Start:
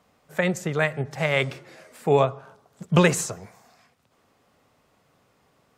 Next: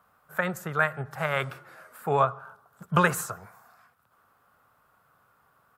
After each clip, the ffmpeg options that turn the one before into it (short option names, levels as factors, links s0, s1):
-af "firequalizer=gain_entry='entry(120,0);entry(270,-6);entry(1400,14);entry(2000,-2);entry(6200,-6);entry(12000,10)':delay=0.05:min_phase=1,volume=0.562"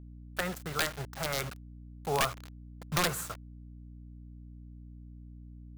-af "acrusher=bits=5:mix=0:aa=0.000001,aeval=exprs='(mod(5.01*val(0)+1,2)-1)/5.01':c=same,aeval=exprs='val(0)+0.00891*(sin(2*PI*60*n/s)+sin(2*PI*2*60*n/s)/2+sin(2*PI*3*60*n/s)/3+sin(2*PI*4*60*n/s)/4+sin(2*PI*5*60*n/s)/5)':c=same,volume=0.531"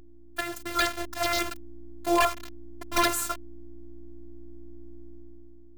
-af "dynaudnorm=f=120:g=11:m=2.51,afftfilt=real='hypot(re,im)*cos(PI*b)':imag='0':win_size=512:overlap=0.75,asoftclip=type=hard:threshold=0.188,volume=1.58"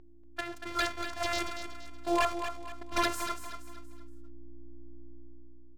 -af "adynamicsmooth=sensitivity=4.5:basefreq=2900,aecho=1:1:236|472|708|944:0.355|0.131|0.0486|0.018,volume=0.562"